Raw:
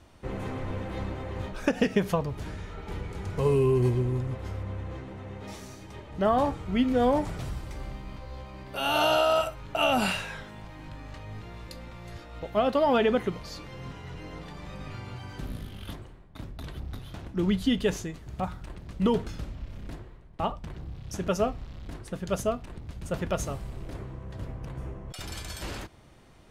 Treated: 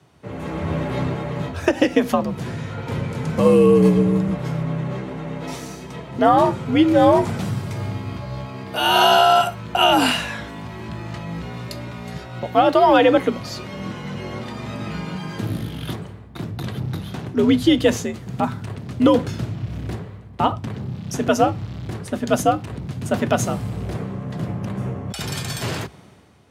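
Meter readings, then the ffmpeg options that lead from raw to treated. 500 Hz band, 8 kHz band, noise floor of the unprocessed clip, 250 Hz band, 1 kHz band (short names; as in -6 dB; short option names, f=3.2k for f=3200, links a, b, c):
+9.0 dB, +9.5 dB, -48 dBFS, +10.5 dB, +11.5 dB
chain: -af "afreqshift=63,dynaudnorm=f=120:g=9:m=10.5dB"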